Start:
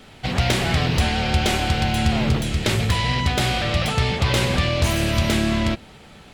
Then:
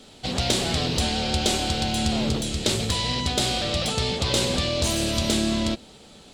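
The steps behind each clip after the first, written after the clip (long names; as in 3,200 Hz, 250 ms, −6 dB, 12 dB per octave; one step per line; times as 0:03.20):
octave-band graphic EQ 125/250/500/2,000/4,000/8,000 Hz −3/+5/+5/−5/+8/+10 dB
level −6.5 dB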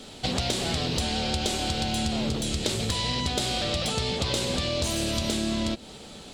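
downward compressor 6 to 1, threshold −29 dBFS, peak gain reduction 11 dB
level +4.5 dB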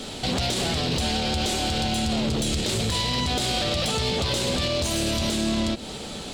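brickwall limiter −23.5 dBFS, peak gain reduction 10.5 dB
soft clipping −26.5 dBFS, distortion −19 dB
level +9 dB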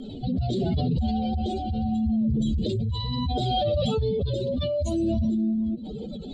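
expanding power law on the bin magnitudes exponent 3
rotating-speaker cabinet horn 0.75 Hz, later 7 Hz, at 0:04.99
level +2 dB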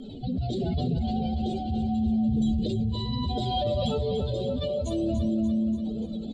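repeating echo 291 ms, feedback 59%, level −9 dB
level −3 dB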